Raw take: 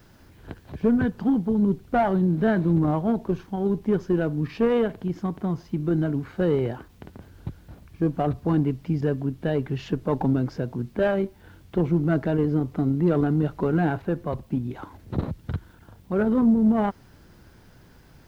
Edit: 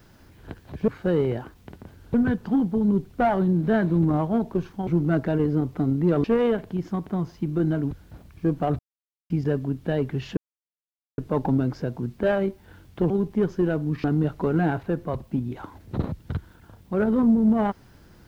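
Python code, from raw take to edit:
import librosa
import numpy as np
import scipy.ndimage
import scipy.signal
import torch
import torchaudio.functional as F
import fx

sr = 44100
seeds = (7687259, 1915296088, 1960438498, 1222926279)

y = fx.edit(x, sr, fx.swap(start_s=3.61, length_s=0.94, other_s=11.86, other_length_s=1.37),
    fx.move(start_s=6.22, length_s=1.26, to_s=0.88),
    fx.silence(start_s=8.36, length_s=0.51),
    fx.insert_silence(at_s=9.94, length_s=0.81), tone=tone)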